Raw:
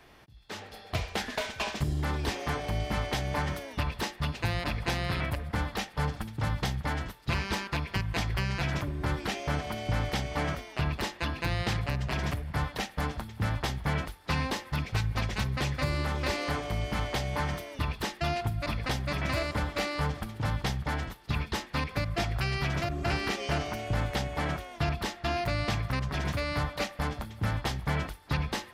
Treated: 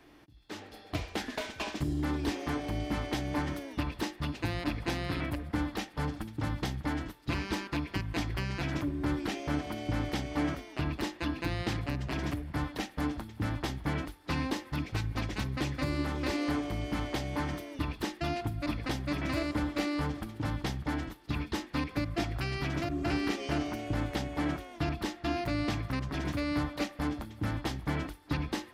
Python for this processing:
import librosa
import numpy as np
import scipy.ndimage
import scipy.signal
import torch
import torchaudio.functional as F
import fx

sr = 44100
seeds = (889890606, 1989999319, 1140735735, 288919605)

y = fx.peak_eq(x, sr, hz=300.0, db=14.0, octaves=0.42)
y = y * librosa.db_to_amplitude(-4.5)